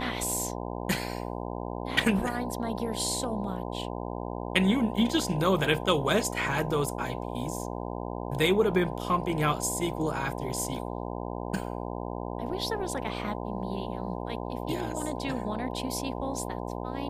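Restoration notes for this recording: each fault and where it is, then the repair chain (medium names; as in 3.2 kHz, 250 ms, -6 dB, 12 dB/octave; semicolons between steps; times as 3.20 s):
buzz 60 Hz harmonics 17 -35 dBFS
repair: de-hum 60 Hz, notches 17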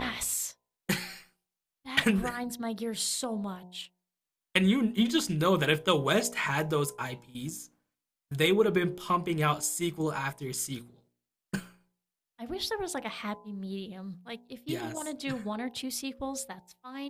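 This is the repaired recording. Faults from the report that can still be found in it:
nothing left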